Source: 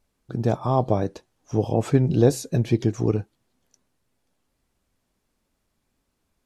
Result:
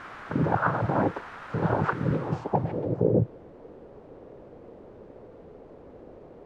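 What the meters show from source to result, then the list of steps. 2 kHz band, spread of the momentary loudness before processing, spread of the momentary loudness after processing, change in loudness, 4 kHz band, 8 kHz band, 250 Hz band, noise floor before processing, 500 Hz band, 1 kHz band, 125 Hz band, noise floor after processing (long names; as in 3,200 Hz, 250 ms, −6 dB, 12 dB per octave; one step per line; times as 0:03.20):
+8.0 dB, 9 LU, 8 LU, −4.0 dB, can't be measured, below −20 dB, −4.5 dB, −75 dBFS, −4.0 dB, +2.0 dB, −5.0 dB, −49 dBFS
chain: cochlear-implant simulation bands 8
compressor whose output falls as the input rises −27 dBFS, ratio −1
bit-depth reduction 6 bits, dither triangular
low-pass filter sweep 1,400 Hz → 470 Hz, 0:02.11–0:03.18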